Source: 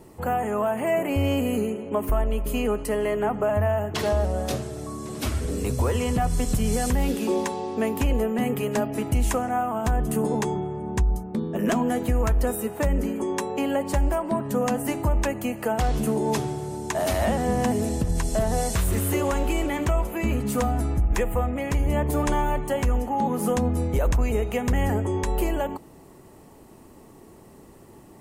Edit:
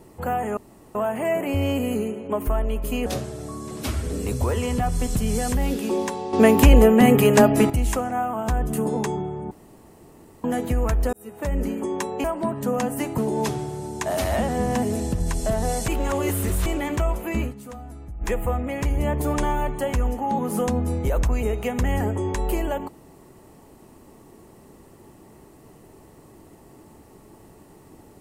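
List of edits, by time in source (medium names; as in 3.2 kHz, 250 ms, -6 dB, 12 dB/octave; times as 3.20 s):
0.57 s: insert room tone 0.38 s
2.68–4.44 s: delete
7.71–9.08 s: gain +10.5 dB
10.89–11.82 s: room tone
12.51–13.00 s: fade in
13.62–14.12 s: delete
15.06–16.07 s: delete
18.77–19.55 s: reverse
20.29–21.21 s: dip -14.5 dB, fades 0.15 s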